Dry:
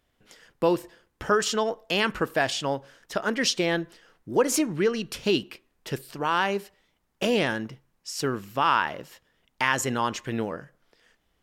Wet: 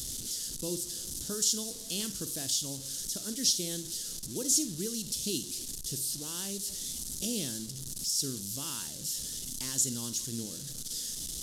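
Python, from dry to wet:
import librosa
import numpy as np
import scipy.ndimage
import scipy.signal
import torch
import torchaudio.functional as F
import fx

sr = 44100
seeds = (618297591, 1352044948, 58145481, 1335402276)

p1 = fx.delta_mod(x, sr, bps=64000, step_db=-29.0)
p2 = fx.curve_eq(p1, sr, hz=(260.0, 890.0, 2400.0, 3500.0, 6200.0), db=(0, -21, -16, 3, 13))
p3 = p2 + fx.room_flutter(p2, sr, wall_m=8.8, rt60_s=0.24, dry=0)
y = F.gain(torch.from_numpy(p3), -8.0).numpy()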